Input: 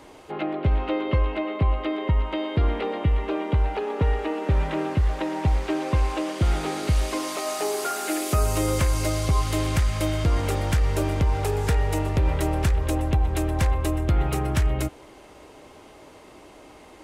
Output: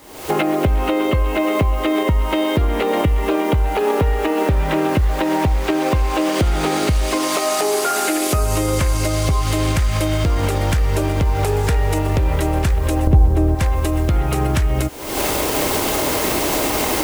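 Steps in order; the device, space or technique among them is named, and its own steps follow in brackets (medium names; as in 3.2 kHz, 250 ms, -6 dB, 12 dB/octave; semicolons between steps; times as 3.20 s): 13.07–13.55 s: tilt shelf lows +10 dB, about 1.3 kHz; cheap recorder with automatic gain (white noise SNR 29 dB; recorder AGC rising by 63 dB/s)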